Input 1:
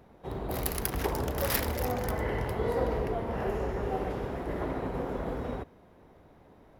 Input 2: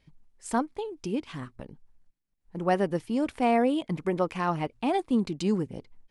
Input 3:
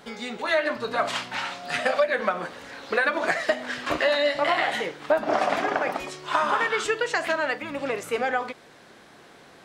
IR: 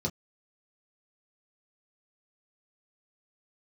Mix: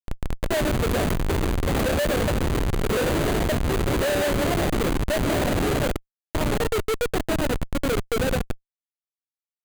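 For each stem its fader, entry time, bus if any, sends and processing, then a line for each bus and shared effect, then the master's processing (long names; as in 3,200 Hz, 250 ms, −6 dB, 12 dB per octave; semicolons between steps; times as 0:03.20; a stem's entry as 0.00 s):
−0.5 dB, 0.25 s, no send, parametric band 340 Hz +12.5 dB 1.2 octaves; mains-hum notches 60/120/180/240/300/360/420/480 Hz
−11.5 dB, 0.00 s, no send, windowed peak hold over 3 samples
−5.0 dB, 0.00 s, no send, low shelf with overshoot 700 Hz +11.5 dB, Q 1.5; notch filter 3,100 Hz, Q 7.5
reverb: not used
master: comparator with hysteresis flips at −21 dBFS; parametric band 5,400 Hz −7 dB 0.22 octaves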